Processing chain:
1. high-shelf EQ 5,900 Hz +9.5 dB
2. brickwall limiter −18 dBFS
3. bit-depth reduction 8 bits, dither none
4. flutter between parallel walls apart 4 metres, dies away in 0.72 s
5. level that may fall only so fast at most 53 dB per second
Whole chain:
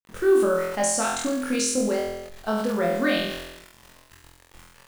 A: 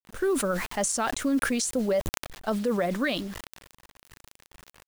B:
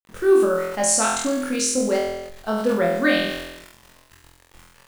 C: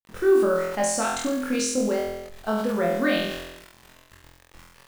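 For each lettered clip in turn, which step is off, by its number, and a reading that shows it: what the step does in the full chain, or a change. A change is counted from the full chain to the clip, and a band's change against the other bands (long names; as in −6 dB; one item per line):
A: 4, change in momentary loudness spread −3 LU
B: 2, change in momentary loudness spread −1 LU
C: 1, 8 kHz band −3.0 dB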